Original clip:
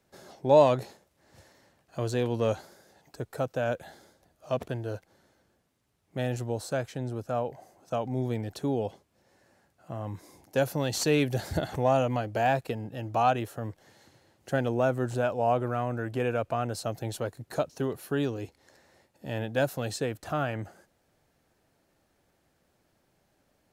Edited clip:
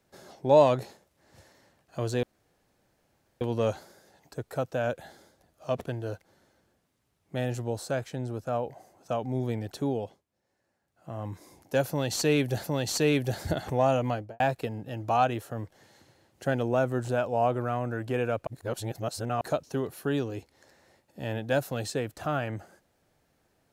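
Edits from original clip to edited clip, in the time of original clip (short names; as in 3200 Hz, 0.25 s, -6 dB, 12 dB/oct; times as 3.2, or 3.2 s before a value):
2.23 insert room tone 1.18 s
8.7–10.02 dip -13 dB, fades 0.38 s
10.7–11.46 loop, 2 plays
12.19–12.46 studio fade out
16.53–17.47 reverse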